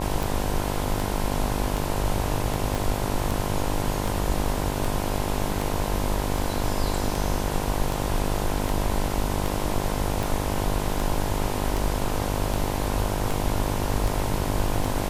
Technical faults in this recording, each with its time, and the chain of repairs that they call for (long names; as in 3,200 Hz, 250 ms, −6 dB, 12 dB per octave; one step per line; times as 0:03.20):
mains buzz 50 Hz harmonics 21 −29 dBFS
scratch tick 78 rpm
0:02.75: click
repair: click removal
hum removal 50 Hz, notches 21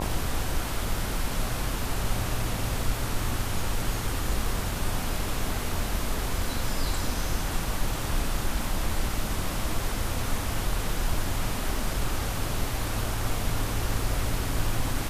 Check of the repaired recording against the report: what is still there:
0:02.75: click